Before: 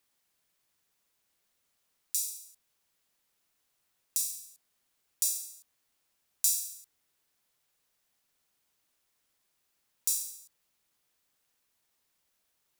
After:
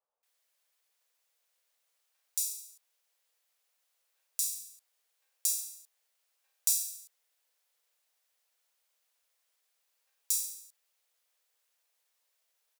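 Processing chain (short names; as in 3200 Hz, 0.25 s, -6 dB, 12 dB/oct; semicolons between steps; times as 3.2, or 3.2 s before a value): elliptic high-pass 470 Hz; bands offset in time lows, highs 0.23 s, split 1100 Hz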